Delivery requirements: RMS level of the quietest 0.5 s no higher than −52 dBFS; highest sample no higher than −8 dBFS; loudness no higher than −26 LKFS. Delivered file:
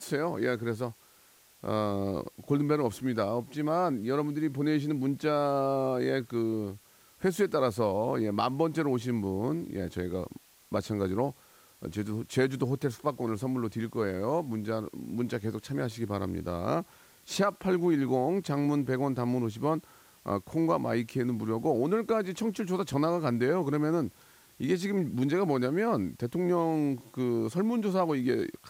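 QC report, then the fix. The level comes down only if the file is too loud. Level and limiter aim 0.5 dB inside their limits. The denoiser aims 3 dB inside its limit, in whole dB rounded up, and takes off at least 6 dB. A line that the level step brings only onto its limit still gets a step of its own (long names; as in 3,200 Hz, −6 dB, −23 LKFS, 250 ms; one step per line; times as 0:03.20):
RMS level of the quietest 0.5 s −60 dBFS: in spec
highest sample −14.0 dBFS: in spec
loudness −30.5 LKFS: in spec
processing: no processing needed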